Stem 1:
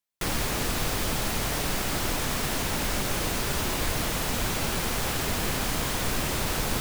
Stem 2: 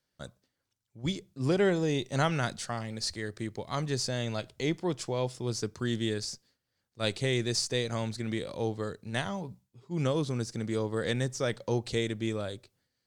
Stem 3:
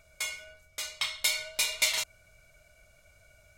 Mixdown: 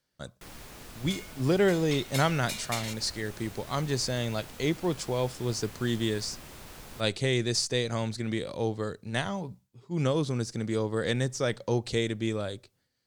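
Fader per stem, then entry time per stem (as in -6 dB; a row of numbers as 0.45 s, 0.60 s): -18.5 dB, +2.0 dB, -9.0 dB; 0.20 s, 0.00 s, 0.90 s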